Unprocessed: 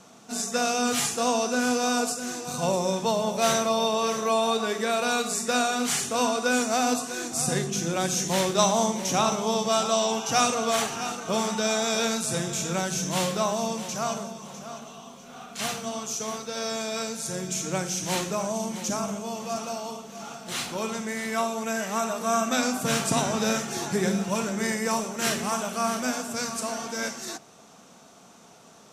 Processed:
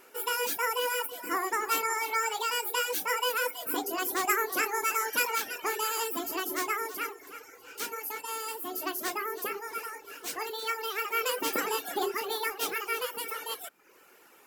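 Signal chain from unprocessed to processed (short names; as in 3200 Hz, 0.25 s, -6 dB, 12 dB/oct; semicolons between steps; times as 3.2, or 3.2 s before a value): speed mistake 7.5 ips tape played at 15 ips; reverb removal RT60 0.68 s; gain -4 dB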